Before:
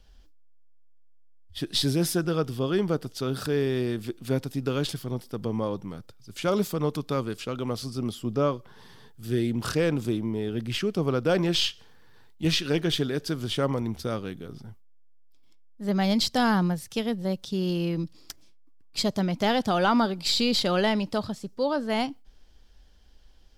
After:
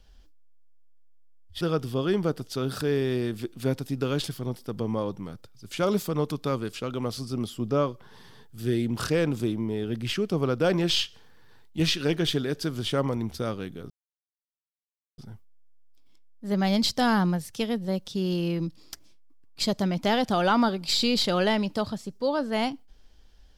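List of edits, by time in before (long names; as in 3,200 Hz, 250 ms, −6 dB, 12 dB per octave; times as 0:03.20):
0:01.61–0:02.26: remove
0:14.55: splice in silence 1.28 s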